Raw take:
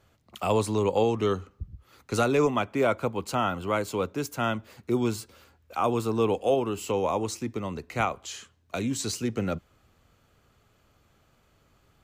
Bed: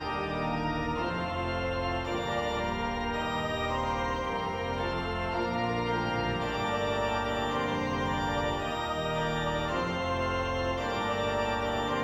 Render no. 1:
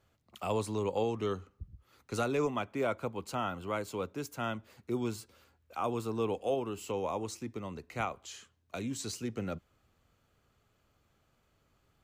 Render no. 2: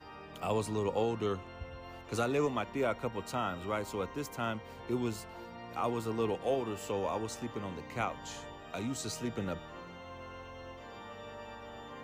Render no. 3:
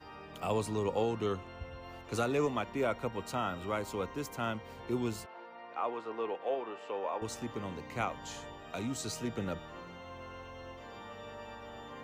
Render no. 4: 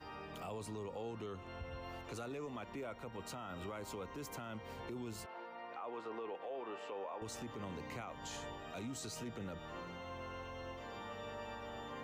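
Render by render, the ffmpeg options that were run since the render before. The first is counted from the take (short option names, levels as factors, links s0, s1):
-af "volume=0.398"
-filter_complex "[1:a]volume=0.141[s0];[0:a][s0]amix=inputs=2:normalize=0"
-filter_complex "[0:a]asettb=1/sr,asplit=3[s0][s1][s2];[s0]atrim=end=5.264[s3];[s1]atrim=start=5.26:end=7.22,asetpts=PTS-STARTPTS,afade=t=in:d=0.004:c=qsin,afade=t=out:st=1.956:d=0.004:c=qsin,highpass=460,lowpass=2500[s4];[s2]atrim=start=7.216[s5];[s3][s4]acrossfade=d=0.004:c1=hsin:c2=qsin[s6];[s6][s5]acrossfade=d=0.004:c1=qsin:c2=hsin"
-af "acompressor=threshold=0.0126:ratio=6,alimiter=level_in=4.22:limit=0.0631:level=0:latency=1:release=11,volume=0.237"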